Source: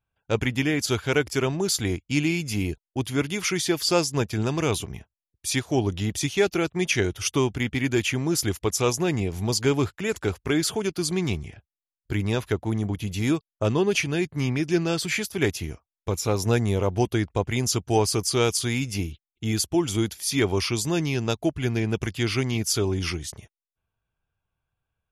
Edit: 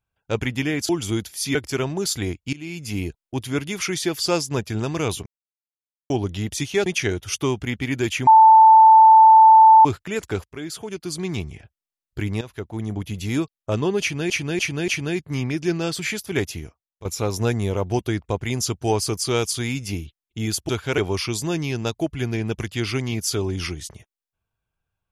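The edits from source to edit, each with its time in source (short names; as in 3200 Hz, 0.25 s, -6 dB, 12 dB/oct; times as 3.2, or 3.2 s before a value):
0.89–1.18 swap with 19.75–20.41
2.16–2.61 fade in, from -23.5 dB
4.89–5.73 mute
6.49–6.79 cut
8.2–9.78 bleep 884 Hz -6.5 dBFS
10.37–11.46 fade in, from -14 dB
12.34–12.94 fade in linear, from -13.5 dB
13.94–14.23 loop, 4 plays
15.57–16.11 fade out, to -14.5 dB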